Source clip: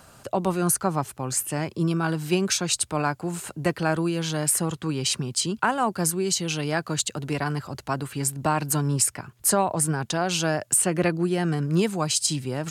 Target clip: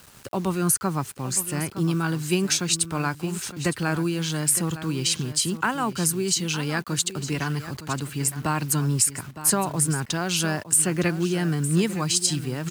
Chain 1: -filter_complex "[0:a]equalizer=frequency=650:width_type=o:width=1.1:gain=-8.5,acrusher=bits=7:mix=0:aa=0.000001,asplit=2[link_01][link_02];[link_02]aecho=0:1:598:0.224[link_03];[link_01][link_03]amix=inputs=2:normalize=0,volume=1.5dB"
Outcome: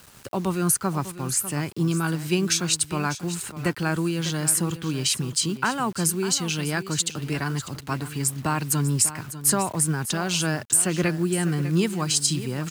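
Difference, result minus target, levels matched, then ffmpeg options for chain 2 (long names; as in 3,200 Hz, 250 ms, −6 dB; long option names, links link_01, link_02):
echo 314 ms early
-filter_complex "[0:a]equalizer=frequency=650:width_type=o:width=1.1:gain=-8.5,acrusher=bits=7:mix=0:aa=0.000001,asplit=2[link_01][link_02];[link_02]aecho=0:1:912:0.224[link_03];[link_01][link_03]amix=inputs=2:normalize=0,volume=1.5dB"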